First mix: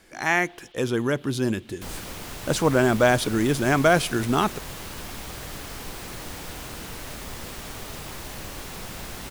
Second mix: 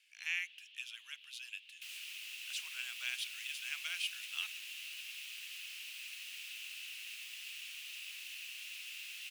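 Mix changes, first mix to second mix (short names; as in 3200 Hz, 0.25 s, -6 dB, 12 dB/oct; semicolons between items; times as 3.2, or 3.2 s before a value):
speech -4.5 dB; master: add ladder high-pass 2500 Hz, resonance 75%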